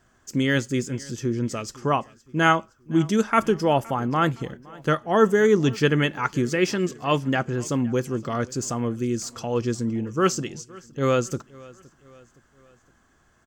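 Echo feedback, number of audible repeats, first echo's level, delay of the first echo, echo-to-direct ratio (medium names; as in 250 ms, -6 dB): 50%, 2, -23.0 dB, 516 ms, -22.0 dB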